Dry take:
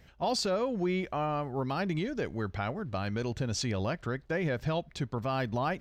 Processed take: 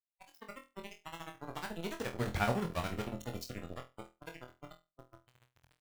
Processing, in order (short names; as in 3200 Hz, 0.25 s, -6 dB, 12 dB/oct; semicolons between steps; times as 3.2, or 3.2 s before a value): Doppler pass-by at 2.47, 28 m/s, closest 5.8 m; in parallel at -2.5 dB: compressor 12:1, threshold -45 dBFS, peak gain reduction 16.5 dB; on the sum: tremolo 14 Hz, depth 79%; sample gate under -40.5 dBFS; spectral noise reduction 15 dB; flutter echo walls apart 4.1 m, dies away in 0.25 s; gain +4 dB